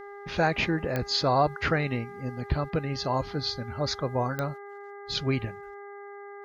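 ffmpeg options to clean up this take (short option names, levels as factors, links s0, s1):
-af "adeclick=t=4,bandreject=f=404:t=h:w=4,bandreject=f=808:t=h:w=4,bandreject=f=1212:t=h:w=4,bandreject=f=1616:t=h:w=4,bandreject=f=2020:t=h:w=4"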